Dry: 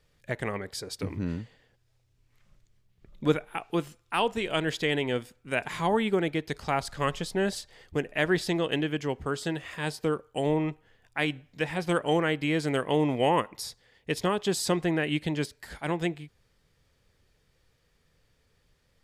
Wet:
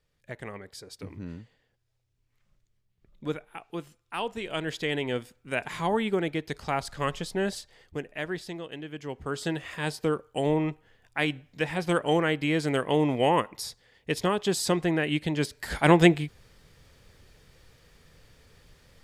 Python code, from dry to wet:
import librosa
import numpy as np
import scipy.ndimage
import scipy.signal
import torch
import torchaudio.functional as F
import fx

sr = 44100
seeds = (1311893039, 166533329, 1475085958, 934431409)

y = fx.gain(x, sr, db=fx.line((3.85, -7.5), (5.12, -1.0), (7.48, -1.0), (8.77, -12.0), (9.45, 1.0), (15.34, 1.0), (15.79, 11.5)))